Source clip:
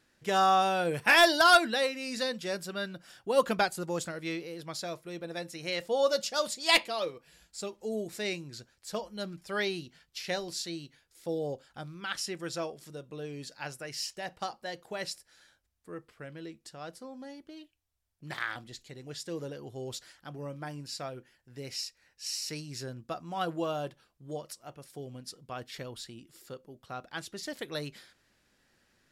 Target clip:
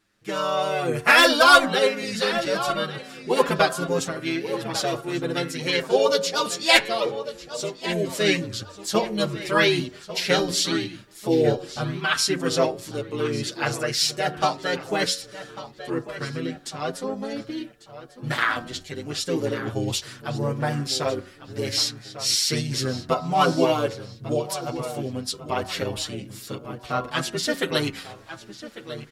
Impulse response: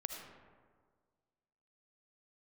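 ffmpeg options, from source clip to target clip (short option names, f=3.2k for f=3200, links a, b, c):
-filter_complex "[0:a]asplit=2[a][b];[b]asetrate=35002,aresample=44100,atempo=1.25992,volume=-4dB[c];[a][c]amix=inputs=2:normalize=0,dynaudnorm=f=520:g=3:m=14dB,bandreject=f=92.04:t=h:w=4,bandreject=f=184.08:t=h:w=4,bandreject=f=276.12:t=h:w=4,bandreject=f=368.16:t=h:w=4,bandreject=f=460.2:t=h:w=4,bandreject=f=552.24:t=h:w=4,bandreject=f=644.28:t=h:w=4,bandreject=f=736.32:t=h:w=4,bandreject=f=828.36:t=h:w=4,bandreject=f=920.4:t=h:w=4,bandreject=f=1.01244k:t=h:w=4,bandreject=f=1.10448k:t=h:w=4,bandreject=f=1.19652k:t=h:w=4,bandreject=f=1.28856k:t=h:w=4,bandreject=f=1.3806k:t=h:w=4,bandreject=f=1.47264k:t=h:w=4,bandreject=f=1.56468k:t=h:w=4,bandreject=f=1.65672k:t=h:w=4,bandreject=f=1.74876k:t=h:w=4,bandreject=f=1.8408k:t=h:w=4,asplit=2[d][e];[e]adelay=1147,lowpass=f=4.5k:p=1,volume=-13dB,asplit=2[f][g];[g]adelay=1147,lowpass=f=4.5k:p=1,volume=0.38,asplit=2[h][i];[i]adelay=1147,lowpass=f=4.5k:p=1,volume=0.38,asplit=2[j][k];[k]adelay=1147,lowpass=f=4.5k:p=1,volume=0.38[l];[f][h][j][l]amix=inputs=4:normalize=0[m];[d][m]amix=inputs=2:normalize=0,asplit=2[n][o];[o]adelay=7,afreqshift=0.46[p];[n][p]amix=inputs=2:normalize=1,volume=1.5dB"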